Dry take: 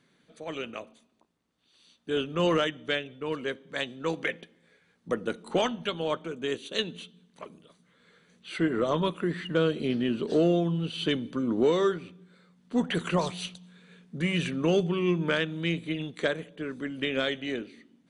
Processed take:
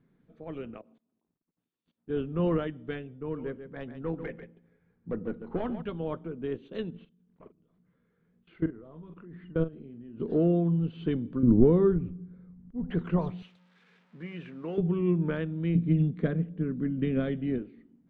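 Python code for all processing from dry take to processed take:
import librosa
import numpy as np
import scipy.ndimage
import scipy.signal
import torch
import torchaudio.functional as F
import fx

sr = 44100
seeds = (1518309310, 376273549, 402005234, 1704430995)

y = fx.chain(x, sr, fx.highpass(hz=150.0, slope=12),
    fx.level_steps(step_db=20), at=(0.77, 2.1))
y = fx.chain(y, sr, fx.air_absorb(metres=190.0),
    fx.clip_hard(threshold_db=-22.5),
    fx.echo_single(ms=142, db=-10.0), at=(3.1, 5.82))
y = fx.chain(y, sr, fx.lowpass(hz=4400.0, slope=12),
    fx.level_steps(step_db=23),
    fx.doubler(ms=43.0, db=-11), at=(6.9, 10.2))
y = fx.chain(y, sr, fx.riaa(side='playback'),
    fx.auto_swell(attack_ms=452.0), at=(11.43, 12.91))
y = fx.chain(y, sr, fx.crossing_spikes(level_db=-27.5),
    fx.highpass(hz=960.0, slope=6),
    fx.high_shelf(hz=4300.0, db=-7.0), at=(13.42, 14.78))
y = fx.chain(y, sr, fx.peak_eq(hz=180.0, db=13.0, octaves=0.97),
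    fx.notch(hz=900.0, q=6.7), at=(15.75, 17.58))
y = scipy.signal.sosfilt(scipy.signal.butter(2, 2600.0, 'lowpass', fs=sr, output='sos'), y)
y = fx.tilt_eq(y, sr, slope=-4.0)
y = fx.notch(y, sr, hz=580.0, q=12.0)
y = y * librosa.db_to_amplitude(-7.5)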